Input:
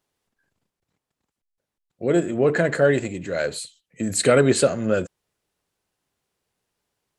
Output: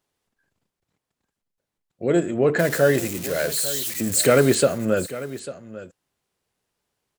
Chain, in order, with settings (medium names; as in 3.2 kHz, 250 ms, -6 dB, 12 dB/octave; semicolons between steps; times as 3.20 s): 2.59–4.55 s: zero-crossing glitches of -20 dBFS; delay 846 ms -15.5 dB